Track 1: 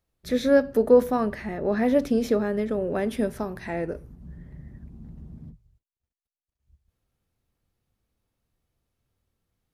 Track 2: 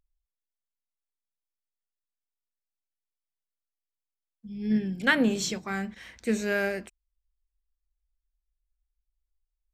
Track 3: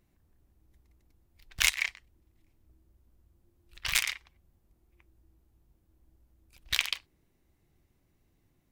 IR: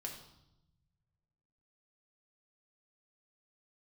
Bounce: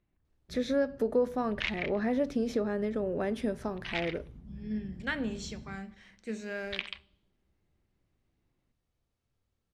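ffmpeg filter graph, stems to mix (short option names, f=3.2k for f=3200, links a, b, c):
-filter_complex "[0:a]adelay=250,volume=-4dB[a];[1:a]volume=-12.5dB,asplit=2[b][c];[c]volume=-7.5dB[d];[2:a]lowpass=f=3.6k:w=0.5412,lowpass=f=3.6k:w=1.3066,volume=-7.5dB,asplit=2[e][f];[f]volume=-16.5dB[g];[a][b]amix=inputs=2:normalize=0,lowpass=7.9k,acompressor=threshold=-28dB:ratio=2,volume=0dB[h];[3:a]atrim=start_sample=2205[i];[d][g]amix=inputs=2:normalize=0[j];[j][i]afir=irnorm=-1:irlink=0[k];[e][h][k]amix=inputs=3:normalize=0"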